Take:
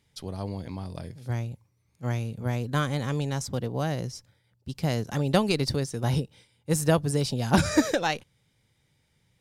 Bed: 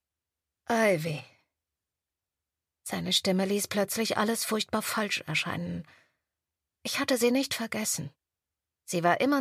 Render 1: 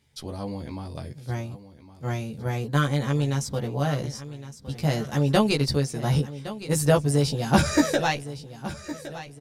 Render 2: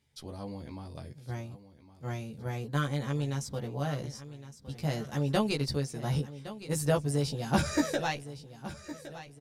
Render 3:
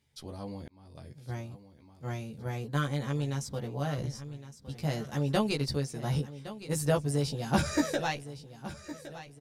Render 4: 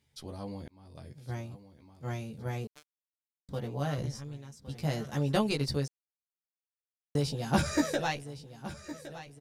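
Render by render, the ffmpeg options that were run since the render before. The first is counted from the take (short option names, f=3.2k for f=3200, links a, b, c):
-filter_complex "[0:a]asplit=2[a][b];[b]adelay=14,volume=-2dB[c];[a][c]amix=inputs=2:normalize=0,aecho=1:1:1113|2226|3339|4452:0.188|0.0772|0.0317|0.013"
-af "volume=-7.5dB"
-filter_complex "[0:a]asettb=1/sr,asplit=3[a][b][c];[a]atrim=end=3.984[d];[b]atrim=start=3.98:end=4.38,asetpts=PTS-STARTPTS,afade=t=in:d=0.004:c=qsin,afade=t=out:st=0.396:d=0.004:c=qsin,lowshelf=f=120:g=10.5[e];[c]atrim=start=4.376[f];[d][e]acrossfade=d=0.004:c1=hsin:c2=qsin[g];[g][f]acrossfade=d=0.004:c1=qsin:c2=hsin,asplit=2[h][i];[h]atrim=end=0.68,asetpts=PTS-STARTPTS,afade=t=out:st=0.676:d=0.004:c=hsin[j];[i]atrim=start=0.68,asetpts=PTS-STARTPTS,afade=t=in:d=0.54[k];[j][k]concat=n=2:v=0:a=1"
-filter_complex "[0:a]asettb=1/sr,asplit=3[a][b][c];[a]atrim=end=2.674[d];[b]atrim=start=2.67:end=3.49,asetpts=PTS-STARTPTS,afade=t=in:d=0.004:c=qsin,afade=t=out:st=0.816:d=0.004:c=qsin,acrusher=bits=2:mix=0:aa=0.5[e];[c]atrim=start=3.486[f];[d][e]acrossfade=d=0.004:c1=hsin:c2=qsin[g];[g][f]acrossfade=d=0.004:c1=qsin:c2=hsin,asplit=3[h][i][j];[h]atrim=end=5.88,asetpts=PTS-STARTPTS,afade=t=out:st=5.876:d=0.004:c=hsin[k];[i]atrim=start=5.88:end=7.15,asetpts=PTS-STARTPTS,volume=0[l];[j]atrim=start=7.15,asetpts=PTS-STARTPTS,afade=t=in:d=0.004:c=hsin[m];[k][l][m]concat=n=3:v=0:a=1"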